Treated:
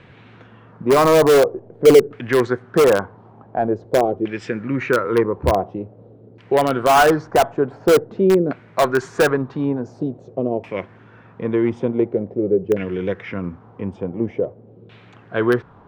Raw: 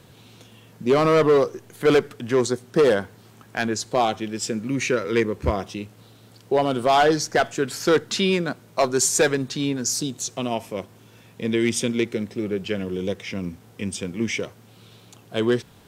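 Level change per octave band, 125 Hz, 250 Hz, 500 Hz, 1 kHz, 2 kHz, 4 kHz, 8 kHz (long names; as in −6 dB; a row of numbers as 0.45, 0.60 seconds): +3.0, +3.5, +5.5, +4.5, +2.5, −2.5, −7.5 decibels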